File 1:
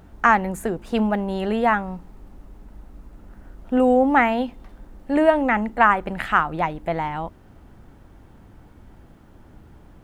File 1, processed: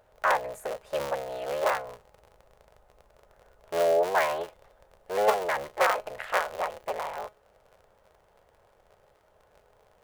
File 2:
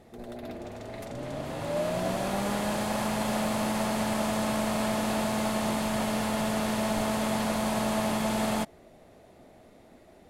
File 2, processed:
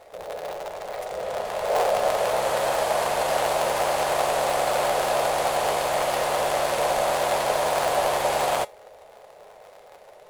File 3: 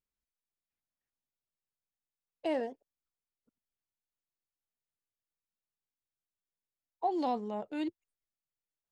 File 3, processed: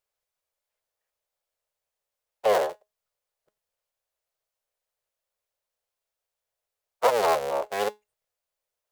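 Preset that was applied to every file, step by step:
cycle switcher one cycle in 3, inverted; resonant low shelf 380 Hz -11.5 dB, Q 3; resonator 210 Hz, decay 0.19 s, harmonics all, mix 50%; normalise peaks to -9 dBFS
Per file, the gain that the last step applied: -5.5, +9.0, +12.0 dB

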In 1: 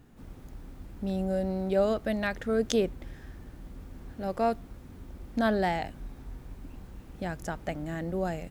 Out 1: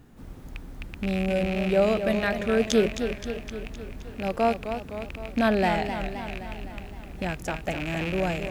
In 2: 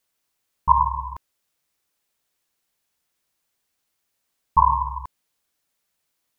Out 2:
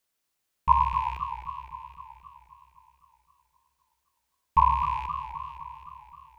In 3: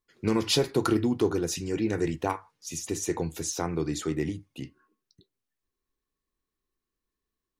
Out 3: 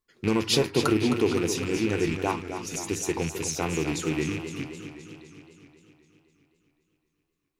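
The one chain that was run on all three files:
rattling part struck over -37 dBFS, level -26 dBFS; warbling echo 0.259 s, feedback 62%, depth 118 cents, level -9 dB; match loudness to -27 LUFS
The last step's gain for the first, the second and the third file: +3.5, -3.5, +1.0 dB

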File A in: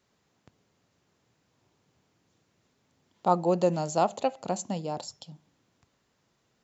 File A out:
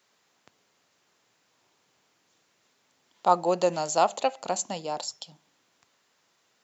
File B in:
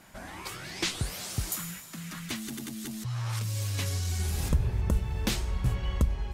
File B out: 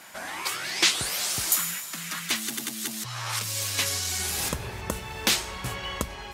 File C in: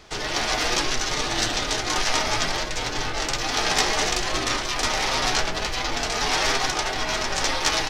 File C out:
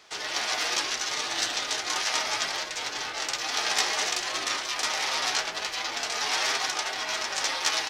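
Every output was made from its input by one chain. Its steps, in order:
HPF 930 Hz 6 dB/oct; match loudness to -27 LUFS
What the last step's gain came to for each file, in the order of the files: +7.0, +10.5, -2.5 dB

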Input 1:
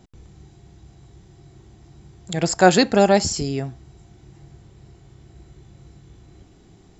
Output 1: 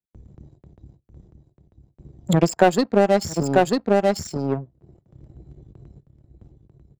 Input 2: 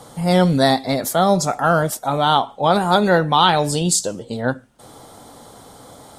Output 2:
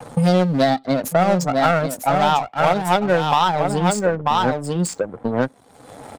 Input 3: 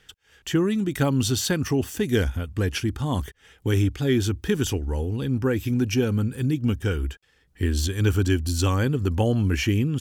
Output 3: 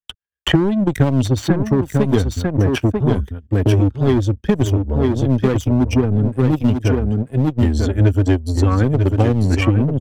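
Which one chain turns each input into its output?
spectral contrast raised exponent 1.7; gate with hold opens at -39 dBFS; in parallel at -5 dB: overloaded stage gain 18.5 dB; on the sum: power-law curve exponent 2; echo 0.943 s -7 dB; three-band squash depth 100%; normalise peaks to -1.5 dBFS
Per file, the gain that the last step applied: +4.5, +3.0, +8.5 dB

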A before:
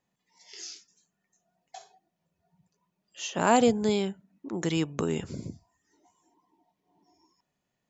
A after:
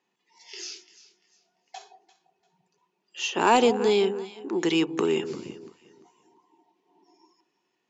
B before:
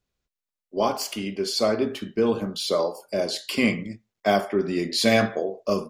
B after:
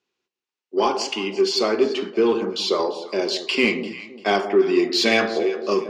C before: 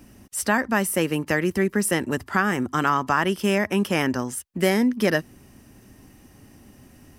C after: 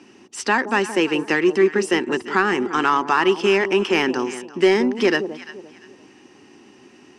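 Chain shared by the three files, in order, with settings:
speaker cabinet 300–6600 Hz, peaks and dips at 370 Hz +9 dB, 610 Hz -9 dB, 900 Hz +4 dB, 2700 Hz +6 dB; echo with dull and thin repeats by turns 0.172 s, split 830 Hz, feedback 51%, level -11 dB; in parallel at -4 dB: soft clip -19.5 dBFS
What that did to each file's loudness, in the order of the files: +3.0, +3.5, +3.5 LU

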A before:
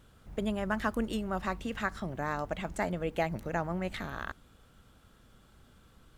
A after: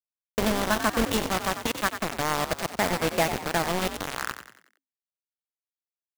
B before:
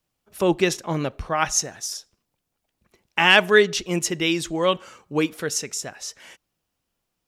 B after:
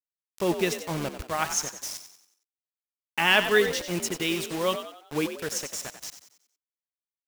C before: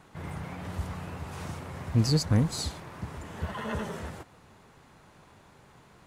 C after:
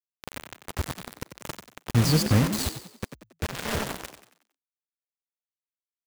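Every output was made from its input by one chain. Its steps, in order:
bit-crush 5-bit; frequency-shifting echo 92 ms, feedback 43%, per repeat +53 Hz, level -10 dB; match loudness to -27 LUFS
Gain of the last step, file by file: +6.0, -6.0, +2.5 dB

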